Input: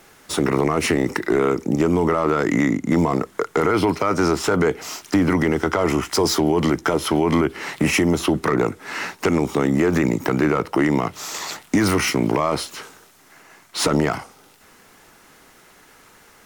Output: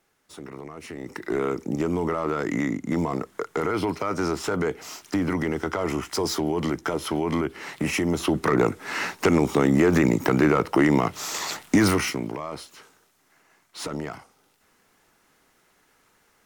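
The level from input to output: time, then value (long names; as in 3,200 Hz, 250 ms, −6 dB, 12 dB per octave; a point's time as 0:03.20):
0:00.87 −20 dB
0:01.35 −7 dB
0:07.96 −7 dB
0:08.64 −0.5 dB
0:11.85 −0.5 dB
0:12.34 −13 dB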